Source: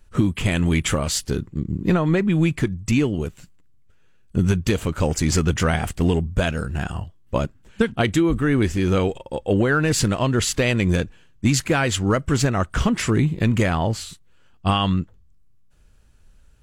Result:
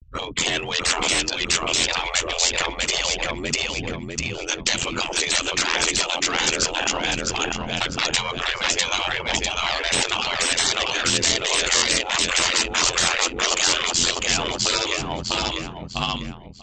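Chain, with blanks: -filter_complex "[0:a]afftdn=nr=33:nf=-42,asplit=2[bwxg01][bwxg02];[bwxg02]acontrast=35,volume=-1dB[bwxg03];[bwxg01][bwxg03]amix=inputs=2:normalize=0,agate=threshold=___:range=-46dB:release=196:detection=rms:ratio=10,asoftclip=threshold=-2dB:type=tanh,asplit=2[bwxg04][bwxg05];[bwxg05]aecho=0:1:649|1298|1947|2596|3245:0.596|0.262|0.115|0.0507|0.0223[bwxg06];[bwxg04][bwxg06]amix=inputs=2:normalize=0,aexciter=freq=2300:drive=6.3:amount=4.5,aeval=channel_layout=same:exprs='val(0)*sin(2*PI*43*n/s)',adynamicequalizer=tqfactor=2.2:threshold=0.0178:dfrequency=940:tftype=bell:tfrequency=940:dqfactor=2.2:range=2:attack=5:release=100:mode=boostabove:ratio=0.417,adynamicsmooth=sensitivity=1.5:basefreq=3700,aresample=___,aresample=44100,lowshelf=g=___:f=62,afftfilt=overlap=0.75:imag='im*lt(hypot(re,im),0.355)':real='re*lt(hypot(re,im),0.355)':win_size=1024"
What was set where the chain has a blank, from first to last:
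-41dB, 16000, -6.5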